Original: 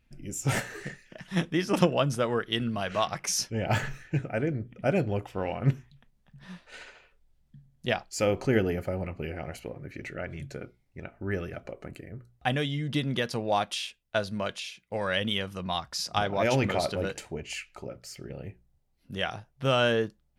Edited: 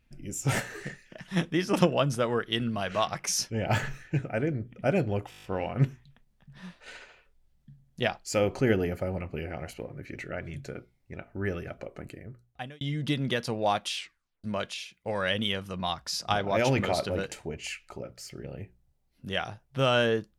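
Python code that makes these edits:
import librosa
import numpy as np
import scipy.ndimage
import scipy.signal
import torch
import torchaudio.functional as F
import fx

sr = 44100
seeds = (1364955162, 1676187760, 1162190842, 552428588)

y = fx.edit(x, sr, fx.stutter(start_s=5.3, slice_s=0.02, count=8),
    fx.fade_out_span(start_s=12.01, length_s=0.66),
    fx.tape_stop(start_s=13.82, length_s=0.48), tone=tone)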